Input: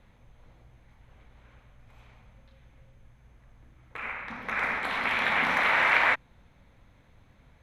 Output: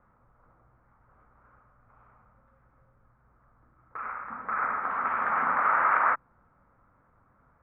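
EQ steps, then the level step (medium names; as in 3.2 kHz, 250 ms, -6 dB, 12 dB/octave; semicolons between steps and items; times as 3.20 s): four-pole ladder low-pass 1.4 kHz, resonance 70%; distance through air 210 m; bass shelf 110 Hz -8 dB; +7.5 dB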